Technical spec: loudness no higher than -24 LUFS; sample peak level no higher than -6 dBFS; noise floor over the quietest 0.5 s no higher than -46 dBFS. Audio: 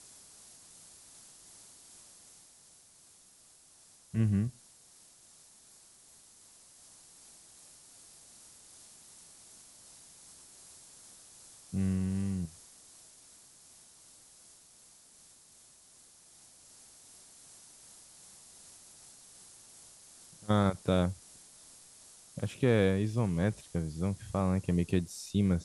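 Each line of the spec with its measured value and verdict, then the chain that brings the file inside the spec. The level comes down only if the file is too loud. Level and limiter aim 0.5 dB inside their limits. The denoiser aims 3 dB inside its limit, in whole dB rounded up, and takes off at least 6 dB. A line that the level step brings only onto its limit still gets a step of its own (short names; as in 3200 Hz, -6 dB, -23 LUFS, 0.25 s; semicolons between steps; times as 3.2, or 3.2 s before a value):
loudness -31.5 LUFS: OK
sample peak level -14.0 dBFS: OK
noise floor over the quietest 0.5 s -60 dBFS: OK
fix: none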